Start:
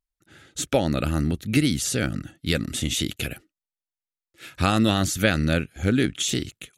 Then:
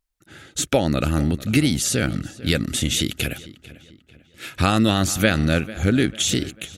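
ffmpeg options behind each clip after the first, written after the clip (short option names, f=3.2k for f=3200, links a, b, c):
-filter_complex "[0:a]asplit=2[a][b];[b]acompressor=threshold=-29dB:ratio=6,volume=1.5dB[c];[a][c]amix=inputs=2:normalize=0,asplit=2[d][e];[e]adelay=445,lowpass=f=4k:p=1,volume=-17.5dB,asplit=2[f][g];[g]adelay=445,lowpass=f=4k:p=1,volume=0.44,asplit=2[h][i];[i]adelay=445,lowpass=f=4k:p=1,volume=0.44,asplit=2[j][k];[k]adelay=445,lowpass=f=4k:p=1,volume=0.44[l];[d][f][h][j][l]amix=inputs=5:normalize=0"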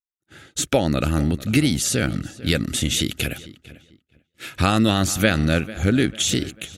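-af "agate=range=-33dB:threshold=-41dB:ratio=3:detection=peak"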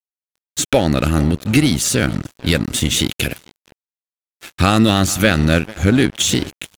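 -af "apsyclip=9dB,aeval=exprs='sgn(val(0))*max(abs(val(0))-0.0531,0)':c=same,volume=-3dB"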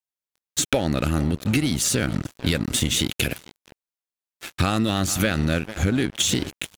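-af "acompressor=threshold=-18dB:ratio=6"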